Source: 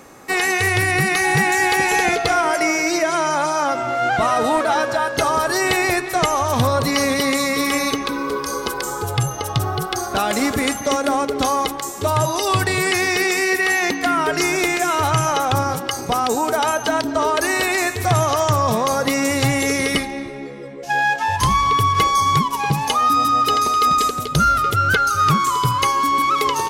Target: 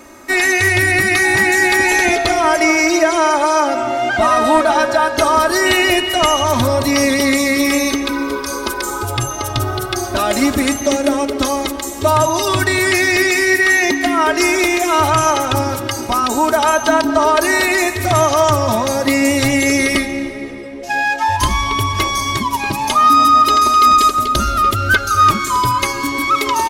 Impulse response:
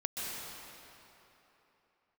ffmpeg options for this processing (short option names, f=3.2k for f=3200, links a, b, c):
-filter_complex "[0:a]aecho=1:1:3.2:0.92,asplit=2[a][b];[1:a]atrim=start_sample=2205,lowshelf=f=200:g=11[c];[b][c]afir=irnorm=-1:irlink=0,volume=-18dB[d];[a][d]amix=inputs=2:normalize=0,asettb=1/sr,asplit=3[e][f][g];[e]atrim=end=5.664[h];[f]atrim=start=5.66:end=6.44,asetpts=PTS-STARTPTS,afade=t=in:d=0.004:c=qsin,afade=t=out:st=0.776:d=0.004:c=qsin,aeval=exprs='val(0)+0.1*sin(2*PI*2900*n/s)':c=same[i];[g]atrim=start=6.436[j];[h][i]acrossfade=d=0.004:c1=hsin:c2=qsin[k];[k][j]acrossfade=d=0.004:c1=qsin:c2=hsin"